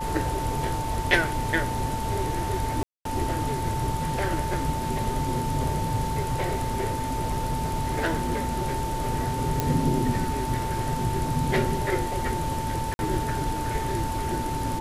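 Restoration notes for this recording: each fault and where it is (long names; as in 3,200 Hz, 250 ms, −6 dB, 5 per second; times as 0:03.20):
whistle 890 Hz −30 dBFS
0:02.83–0:03.05: drop-out 223 ms
0:06.19–0:08.63: clipping −20.5 dBFS
0:09.60: click
0:12.94–0:12.99: drop-out 51 ms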